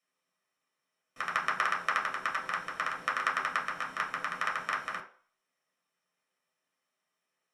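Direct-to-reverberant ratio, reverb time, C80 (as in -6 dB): -3.5 dB, 0.45 s, 14.5 dB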